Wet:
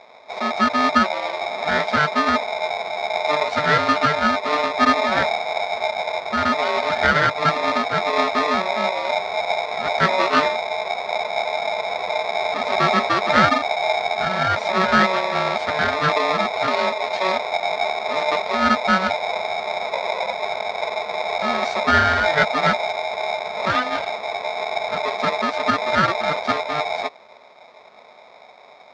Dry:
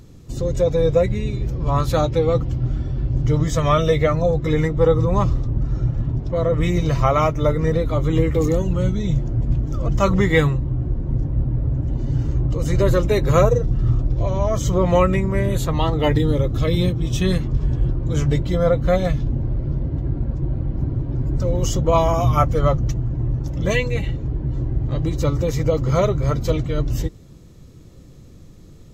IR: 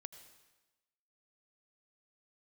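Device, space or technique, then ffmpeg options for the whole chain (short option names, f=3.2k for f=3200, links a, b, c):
ring modulator pedal into a guitar cabinet: -filter_complex "[0:a]asettb=1/sr,asplit=3[a][b][c];[a]atrim=end=19.934[d];[b]atrim=start=19.93:end=20.33,asetpts=PTS-STARTPTS,afade=t=in:d=0.004:c=qsin,afade=t=out:st=0.396:d=0.004:c=qsin,equalizer=f=200:w=4:g=13.5[e];[c]atrim=start=20.326[f];[d][e]acrossfade=d=0.004:c1=hsin:c2=qsin[g];[g][f]acrossfade=d=0.004:c1=qsin:c2=hsin,aeval=exprs='val(0)*sgn(sin(2*PI*750*n/s))':c=same,highpass=98,equalizer=f=130:t=q:w=4:g=-5,equalizer=f=310:t=q:w=4:g=-9,equalizer=f=810:t=q:w=4:g=-8,equalizer=f=1.5k:t=q:w=4:g=7,equalizer=f=2.8k:t=q:w=4:g=-9,lowpass=f=4.4k:w=0.5412,lowpass=f=4.4k:w=1.3066"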